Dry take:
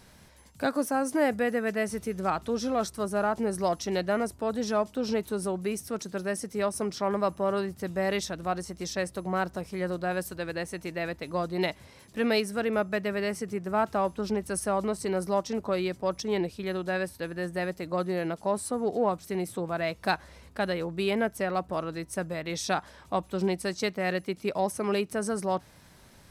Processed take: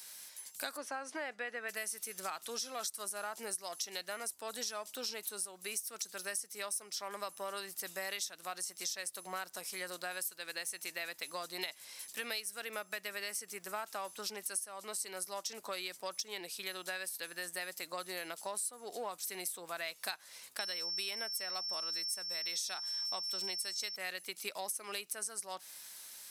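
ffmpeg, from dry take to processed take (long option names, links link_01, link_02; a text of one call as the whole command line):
ffmpeg -i in.wav -filter_complex "[0:a]asplit=3[link_01][link_02][link_03];[link_01]afade=type=out:start_time=0.76:duration=0.02[link_04];[link_02]highpass=210,lowpass=2900,afade=type=in:start_time=0.76:duration=0.02,afade=type=out:start_time=1.68:duration=0.02[link_05];[link_03]afade=type=in:start_time=1.68:duration=0.02[link_06];[link_04][link_05][link_06]amix=inputs=3:normalize=0,asettb=1/sr,asplit=3[link_07][link_08][link_09];[link_07]atrim=end=20.594[link_10];[link_08]atrim=start=20.59:end=23.96,asetpts=PTS-STARTPTS,afade=type=in:duration=0.004:curve=qsin,afade=type=out:start_time=3.366:duration=0.004:curve=qsin,aeval=exprs='val(0)+0.0112*sin(2*PI*5400*n/s)':channel_layout=same[link_11];[link_09]atrim=start=23.956[link_12];[link_10][link_11]acrossfade=duration=0.004:curve1=hsin:curve2=qsin[link_13];[link_13][link_12]acrossfade=duration=0.004:curve1=qsin:curve2=hsin,highpass=frequency=170:poles=1,aderivative,acompressor=threshold=-48dB:ratio=6,volume=11.5dB" out.wav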